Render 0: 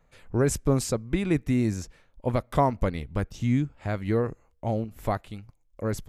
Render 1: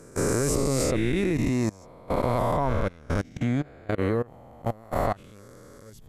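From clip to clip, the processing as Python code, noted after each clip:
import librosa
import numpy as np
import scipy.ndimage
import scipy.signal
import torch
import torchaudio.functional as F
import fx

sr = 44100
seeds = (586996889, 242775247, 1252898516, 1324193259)

y = fx.spec_swells(x, sr, rise_s=2.5)
y = fx.level_steps(y, sr, step_db=24)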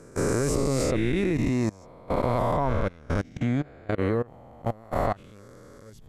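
y = fx.high_shelf(x, sr, hz=8400.0, db=-9.0)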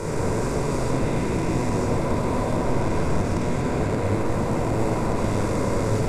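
y = fx.bin_compress(x, sr, power=0.2)
y = fx.level_steps(y, sr, step_db=12)
y = fx.room_shoebox(y, sr, seeds[0], volume_m3=2100.0, walls='mixed', distance_m=4.7)
y = y * librosa.db_to_amplitude(-8.5)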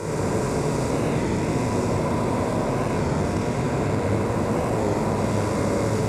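y = scipy.signal.sosfilt(scipy.signal.butter(2, 66.0, 'highpass', fs=sr, output='sos'), x)
y = y + 10.0 ** (-5.5 / 20.0) * np.pad(y, (int(97 * sr / 1000.0), 0))[:len(y)]
y = fx.record_warp(y, sr, rpm=33.33, depth_cents=100.0)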